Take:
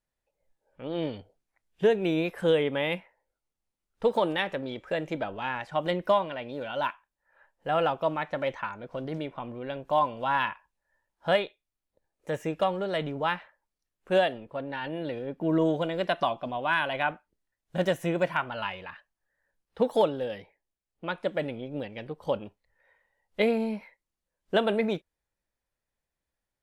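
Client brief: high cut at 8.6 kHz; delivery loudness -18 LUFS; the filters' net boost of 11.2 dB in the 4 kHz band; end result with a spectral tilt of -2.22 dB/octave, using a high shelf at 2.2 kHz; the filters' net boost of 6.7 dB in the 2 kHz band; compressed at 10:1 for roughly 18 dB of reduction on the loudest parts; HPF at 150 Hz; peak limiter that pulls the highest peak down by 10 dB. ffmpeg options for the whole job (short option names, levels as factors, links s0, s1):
-af "highpass=150,lowpass=8600,equalizer=f=2000:t=o:g=3,highshelf=f=2200:g=7.5,equalizer=f=4000:t=o:g=7,acompressor=threshold=0.0178:ratio=10,volume=15.8,alimiter=limit=0.562:level=0:latency=1"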